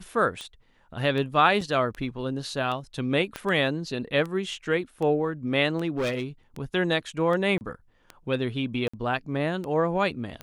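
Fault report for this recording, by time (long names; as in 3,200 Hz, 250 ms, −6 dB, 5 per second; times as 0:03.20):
scratch tick 78 rpm −22 dBFS
0:01.61: drop-out 4.2 ms
0:03.36: click −17 dBFS
0:05.96–0:06.24: clipping −23.5 dBFS
0:07.58–0:07.61: drop-out 29 ms
0:08.88–0:08.94: drop-out 55 ms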